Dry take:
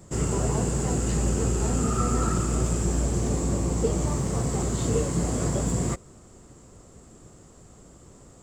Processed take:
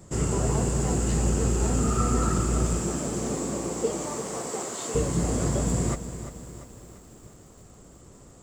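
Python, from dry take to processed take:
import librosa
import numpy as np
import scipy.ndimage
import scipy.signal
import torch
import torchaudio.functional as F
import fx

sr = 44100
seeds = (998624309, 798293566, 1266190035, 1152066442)

y = fx.highpass(x, sr, hz=fx.line((2.78, 150.0), (4.94, 550.0)), slope=12, at=(2.78, 4.94), fade=0.02)
y = fx.echo_crushed(y, sr, ms=345, feedback_pct=55, bits=8, wet_db=-11.5)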